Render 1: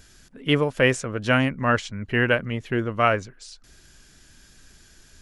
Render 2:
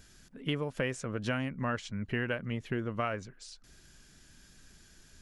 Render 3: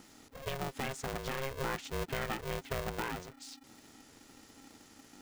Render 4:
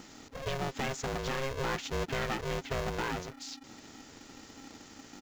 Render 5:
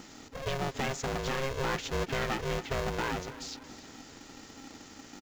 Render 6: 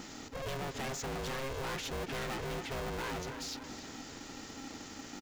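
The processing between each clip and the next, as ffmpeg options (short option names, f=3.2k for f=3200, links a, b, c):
-af "equalizer=f=180:w=1.5:g=4,acompressor=threshold=-23dB:ratio=6,volume=-6dB"
-af "alimiter=level_in=2dB:limit=-24dB:level=0:latency=1:release=273,volume=-2dB,aeval=exprs='val(0)*sgn(sin(2*PI*270*n/s))':c=same"
-af "aresample=16000,asoftclip=type=tanh:threshold=-34dB,aresample=44100,acrusher=bits=5:mode=log:mix=0:aa=0.000001,volume=6.5dB"
-af "aecho=1:1:283|566|849|1132:0.15|0.0733|0.0359|0.0176,volume=1.5dB"
-af "asoftclip=type=tanh:threshold=-39.5dB,volume=3.5dB"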